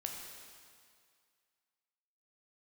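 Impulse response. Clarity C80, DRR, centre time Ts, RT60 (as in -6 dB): 3.5 dB, 0.5 dB, 77 ms, 2.1 s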